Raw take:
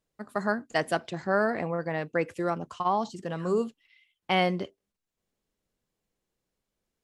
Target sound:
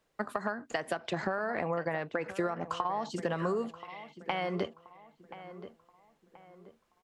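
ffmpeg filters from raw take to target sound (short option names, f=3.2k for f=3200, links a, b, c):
-filter_complex "[0:a]equalizer=f=1.2k:w=0.31:g=10.5,acompressor=threshold=-20dB:ratio=6,alimiter=limit=-15dB:level=0:latency=1:release=332,acrossover=split=120[a][b];[b]acompressor=threshold=-31dB:ratio=6[c];[a][c]amix=inputs=2:normalize=0,asplit=2[d][e];[e]adelay=1029,lowpass=f=2.1k:p=1,volume=-13.5dB,asplit=2[f][g];[g]adelay=1029,lowpass=f=2.1k:p=1,volume=0.39,asplit=2[h][i];[i]adelay=1029,lowpass=f=2.1k:p=1,volume=0.39,asplit=2[j][k];[k]adelay=1029,lowpass=f=2.1k:p=1,volume=0.39[l];[f][h][j][l]amix=inputs=4:normalize=0[m];[d][m]amix=inputs=2:normalize=0,volume=2dB"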